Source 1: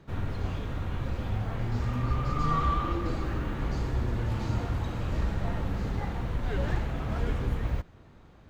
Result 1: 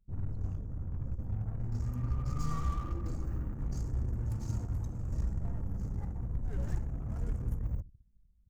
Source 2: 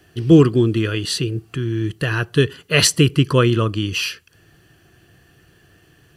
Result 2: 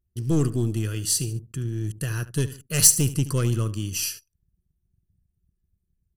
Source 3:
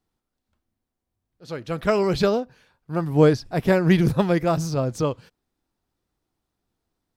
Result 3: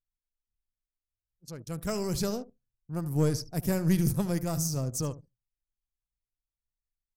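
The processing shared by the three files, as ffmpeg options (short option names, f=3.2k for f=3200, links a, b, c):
-filter_complex "[0:a]aeval=exprs='(tanh(2.51*val(0)+0.35)-tanh(0.35))/2.51':c=same,aexciter=amount=5.7:drive=6.5:freq=5.3k,bass=f=250:g=10,treble=f=4k:g=5,asplit=2[a][b];[b]aecho=0:1:74|148|222:0.178|0.0658|0.0243[c];[a][c]amix=inputs=2:normalize=0,anlmdn=15.8,volume=-13dB"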